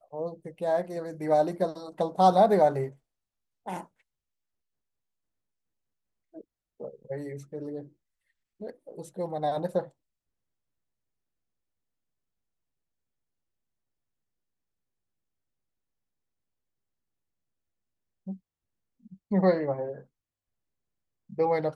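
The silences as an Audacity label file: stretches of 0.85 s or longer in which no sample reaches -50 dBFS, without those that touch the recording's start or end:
3.860000	6.340000	silence
9.890000	18.270000	silence
20.040000	21.300000	silence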